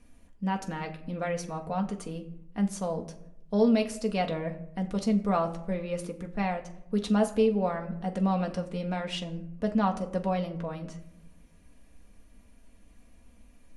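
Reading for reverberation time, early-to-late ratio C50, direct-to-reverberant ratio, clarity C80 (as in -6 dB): 0.80 s, 13.5 dB, 2.5 dB, 16.0 dB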